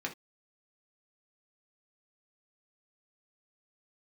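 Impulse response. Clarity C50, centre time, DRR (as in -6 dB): 13.5 dB, 11 ms, 0.5 dB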